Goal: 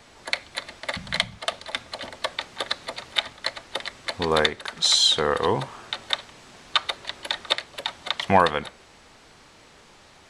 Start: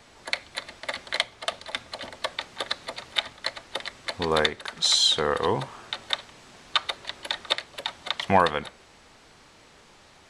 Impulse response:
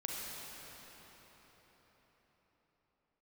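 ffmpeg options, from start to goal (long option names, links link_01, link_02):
-filter_complex "[0:a]asettb=1/sr,asplit=3[link_01][link_02][link_03];[link_01]atrim=end=0.964[link_04];[link_02]atrim=start=0.96:end=1.38,asetpts=PTS-STARTPTS,afade=type=in:duration=0.004:curve=qsin,afade=type=out:start_time=0.416:duration=0.004:curve=qsin,lowshelf=frequency=250:width_type=q:width=3:gain=12[link_05];[link_03]atrim=start=1.376[link_06];[link_04][link_05]acrossfade=duration=0.004:curve1=hsin:curve2=qsin[link_07];[link_07][link_06]acrossfade=duration=0.004:curve1=qsin:curve2=hsin,volume=2dB"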